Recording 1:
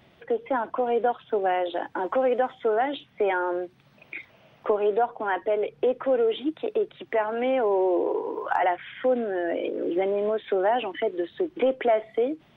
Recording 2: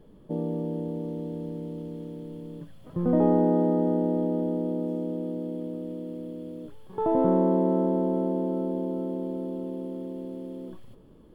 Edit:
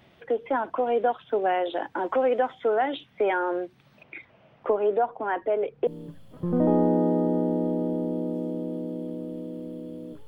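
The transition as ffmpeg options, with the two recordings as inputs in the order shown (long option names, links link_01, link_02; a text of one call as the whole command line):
ffmpeg -i cue0.wav -i cue1.wav -filter_complex "[0:a]asettb=1/sr,asplit=3[link_01][link_02][link_03];[link_01]atrim=end=4.034[link_04];[link_02]atrim=start=4.03:end=5.87,asetpts=PTS-STARTPTS,afade=type=in:duration=0.004:curve=qsin,afade=type=out:start_time=1.836:duration=0.004:curve=qsin,lowpass=frequency=1700:poles=1[link_05];[link_03]atrim=start=5.866[link_06];[link_04][link_05]acrossfade=duration=0.004:curve1=hsin:curve2=qsin[link_07];[link_07][link_06]acrossfade=duration=0.004:curve1=qsin:curve2=hsin,apad=whole_dur=10.27,atrim=end=10.27,atrim=end=5.872[link_08];[1:a]atrim=start=2.398:end=6.8[link_09];[link_08][link_09]acrossfade=duration=0.004:curve1=hsin:curve2=hsin" out.wav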